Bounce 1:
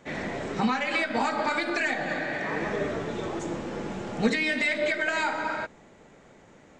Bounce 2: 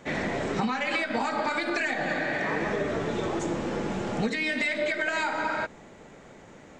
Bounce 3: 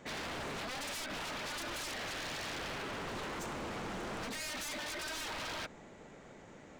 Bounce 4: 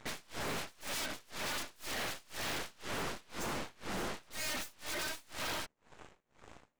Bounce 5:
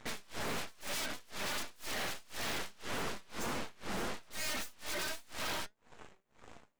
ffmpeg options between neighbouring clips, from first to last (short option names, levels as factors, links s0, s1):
-af "acompressor=threshold=0.0355:ratio=6,volume=1.68"
-af "aeval=exprs='0.0282*(abs(mod(val(0)/0.0282+3,4)-2)-1)':c=same,volume=0.562"
-af "tremolo=f=2:d=0.88,aeval=exprs='0.0158*(cos(1*acos(clip(val(0)/0.0158,-1,1)))-cos(1*PI/2))+0.00355*(cos(6*acos(clip(val(0)/0.0158,-1,1)))-cos(6*PI/2))+0.00251*(cos(7*acos(clip(val(0)/0.0158,-1,1)))-cos(7*PI/2))':c=same,volume=1.41"
-af "flanger=delay=3.9:depth=1.4:regen=79:speed=1.7:shape=triangular,volume=1.68"